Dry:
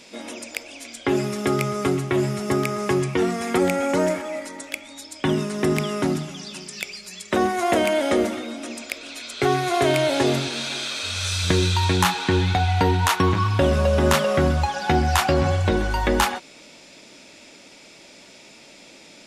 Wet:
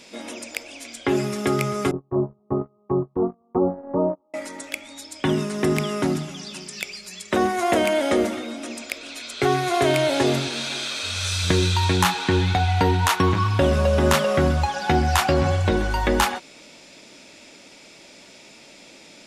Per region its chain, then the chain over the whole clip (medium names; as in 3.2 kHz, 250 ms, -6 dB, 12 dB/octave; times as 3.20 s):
1.91–4.34 s: steep low-pass 1.2 kHz 96 dB/octave + gate -22 dBFS, range -34 dB
whole clip: none